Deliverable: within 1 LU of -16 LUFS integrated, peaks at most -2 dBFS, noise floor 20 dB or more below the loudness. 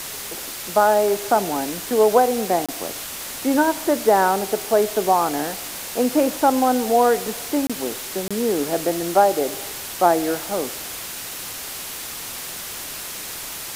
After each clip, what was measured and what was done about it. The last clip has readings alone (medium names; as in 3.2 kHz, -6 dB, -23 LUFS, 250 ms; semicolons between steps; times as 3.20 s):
dropouts 3; longest dropout 26 ms; noise floor -33 dBFS; noise floor target -42 dBFS; loudness -21.5 LUFS; peak level -3.5 dBFS; loudness target -16.0 LUFS
-> interpolate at 2.66/7.67/8.28 s, 26 ms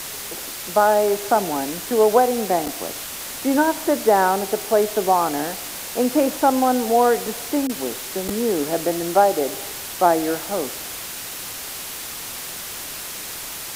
dropouts 0; noise floor -33 dBFS; noise floor target -42 dBFS
-> noise reduction 9 dB, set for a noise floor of -33 dBFS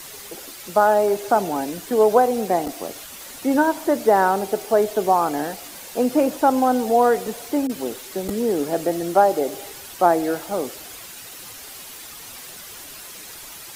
noise floor -39 dBFS; noise floor target -41 dBFS
-> noise reduction 6 dB, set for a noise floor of -39 dBFS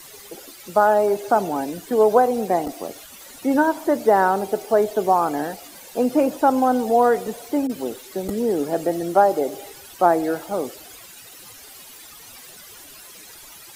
noise floor -43 dBFS; loudness -20.5 LUFS; peak level -3.5 dBFS; loudness target -16.0 LUFS
-> trim +4.5 dB; peak limiter -2 dBFS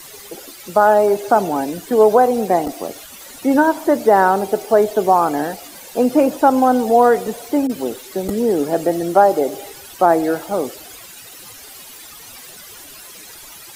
loudness -16.5 LUFS; peak level -2.0 dBFS; noise floor -39 dBFS